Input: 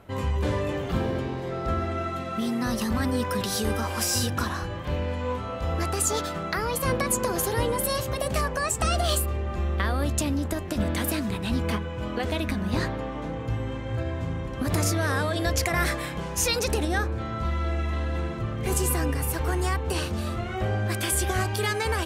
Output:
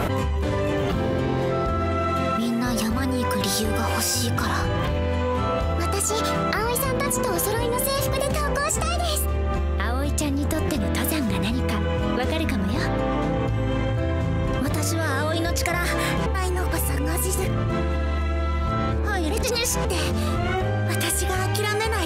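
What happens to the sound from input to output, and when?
16.26–19.85 s: reverse
whole clip: level flattener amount 100%; trim -1.5 dB

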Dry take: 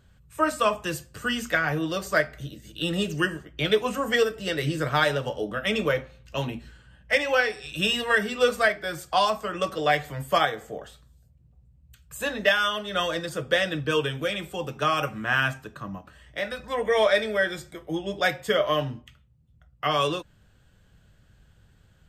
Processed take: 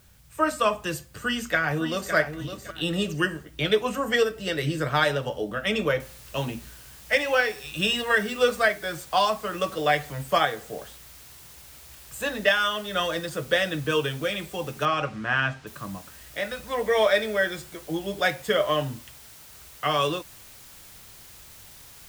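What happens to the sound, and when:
1.06–2.14 s: echo throw 560 ms, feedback 25%, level -9 dB
6.00 s: noise floor step -61 dB -48 dB
14.85–15.67 s: distance through air 110 m

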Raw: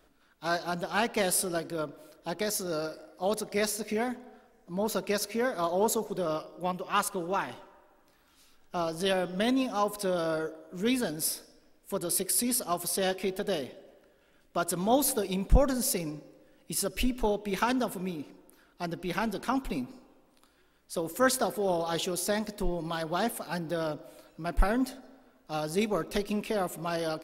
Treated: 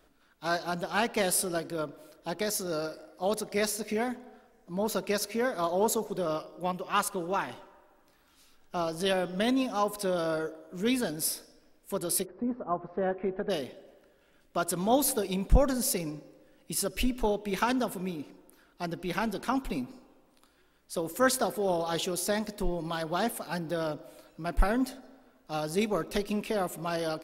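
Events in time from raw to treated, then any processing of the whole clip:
12.24–13.49 s: low-pass 1.1 kHz -> 1.9 kHz 24 dB/octave

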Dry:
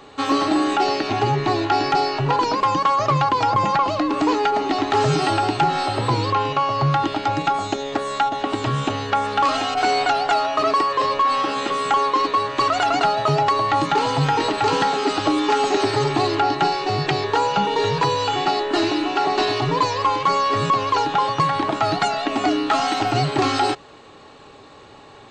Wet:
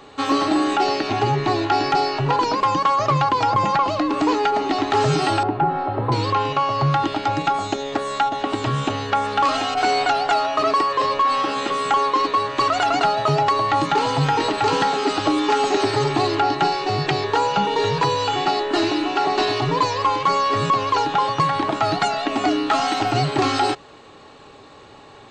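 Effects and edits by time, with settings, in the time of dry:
5.43–6.12 s: low-pass 1.2 kHz

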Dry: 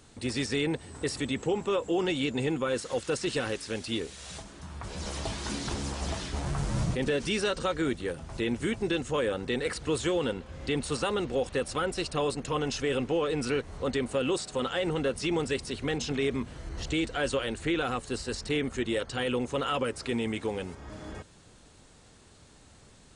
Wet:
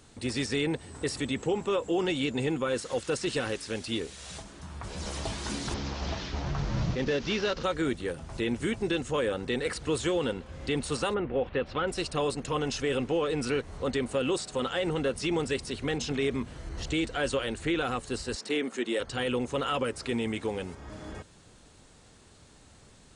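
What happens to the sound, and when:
5.74–7.64 s: CVSD coder 32 kbps
11.13–11.86 s: low-pass 2.1 kHz -> 4.4 kHz 24 dB/octave
18.36–19.00 s: high-pass 220 Hz 24 dB/octave

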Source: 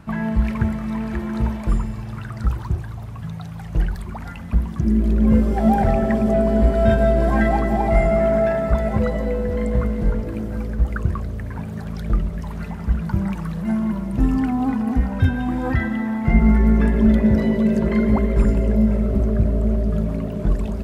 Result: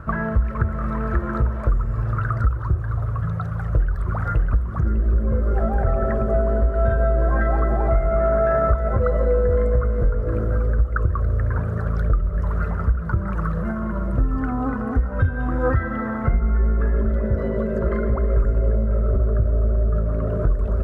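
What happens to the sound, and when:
3.47–4.64 s: echo throw 600 ms, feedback 60%, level -4 dB
whole clip: bass shelf 200 Hz +9 dB; compression 6:1, threshold -18 dBFS; FFT filter 110 Hz 0 dB, 210 Hz -10 dB, 540 Hz +8 dB, 850 Hz -5 dB, 1.3 kHz +13 dB, 2.3 kHz -9 dB, 3.7 kHz -12 dB; trim +2.5 dB

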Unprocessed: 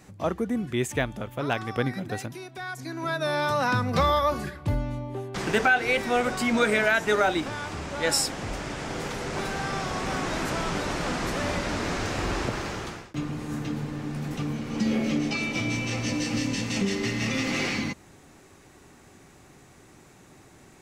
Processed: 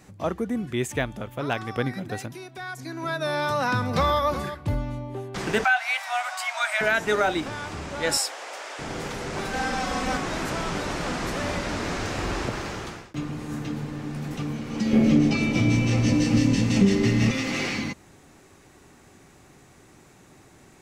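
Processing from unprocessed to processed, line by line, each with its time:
3.43–4.17 s: echo throw 370 ms, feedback 15%, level -13 dB
5.64–6.81 s: steep high-pass 620 Hz 96 dB/octave
8.17–8.79 s: high-pass 510 Hz 24 dB/octave
9.53–10.17 s: comb 3.9 ms, depth 98%
14.93–17.31 s: bass shelf 430 Hz +11 dB

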